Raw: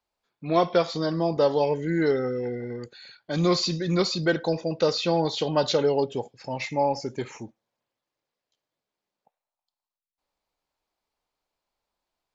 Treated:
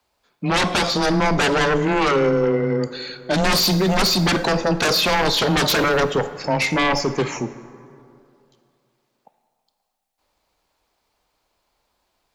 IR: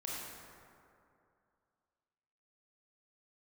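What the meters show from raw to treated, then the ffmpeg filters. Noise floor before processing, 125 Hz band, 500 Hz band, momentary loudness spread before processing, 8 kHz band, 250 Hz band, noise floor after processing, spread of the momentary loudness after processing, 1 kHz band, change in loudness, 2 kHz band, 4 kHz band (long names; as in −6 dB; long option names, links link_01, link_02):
below −85 dBFS, +6.5 dB, +3.5 dB, 13 LU, can't be measured, +6.0 dB, −73 dBFS, 7 LU, +8.0 dB, +6.5 dB, +13.5 dB, +10.5 dB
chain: -filter_complex "[0:a]aeval=exprs='0.376*sin(PI/2*6.31*val(0)/0.376)':channel_layout=same,afreqshift=13,asplit=2[link_01][link_02];[1:a]atrim=start_sample=2205,asetrate=43659,aresample=44100[link_03];[link_02][link_03]afir=irnorm=-1:irlink=0,volume=-11.5dB[link_04];[link_01][link_04]amix=inputs=2:normalize=0,volume=-7.5dB"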